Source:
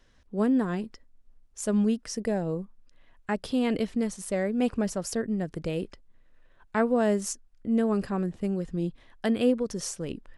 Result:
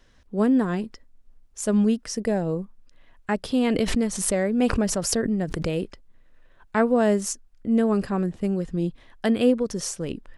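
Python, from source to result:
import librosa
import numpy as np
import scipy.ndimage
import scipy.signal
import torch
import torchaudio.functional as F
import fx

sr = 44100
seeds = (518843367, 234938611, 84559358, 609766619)

y = fx.pre_swell(x, sr, db_per_s=50.0, at=(3.67, 5.78))
y = y * 10.0 ** (4.0 / 20.0)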